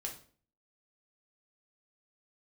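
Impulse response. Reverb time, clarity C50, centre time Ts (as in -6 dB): 0.45 s, 9.5 dB, 18 ms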